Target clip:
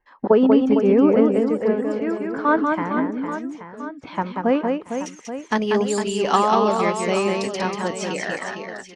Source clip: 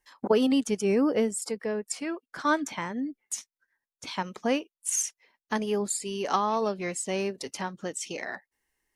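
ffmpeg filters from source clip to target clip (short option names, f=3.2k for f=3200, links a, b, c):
-af "asetnsamples=n=441:p=0,asendcmd='5.06 lowpass f 4900',lowpass=1.5k,aecho=1:1:190|456|828.4|1350|2080:0.631|0.398|0.251|0.158|0.1,volume=7.5dB"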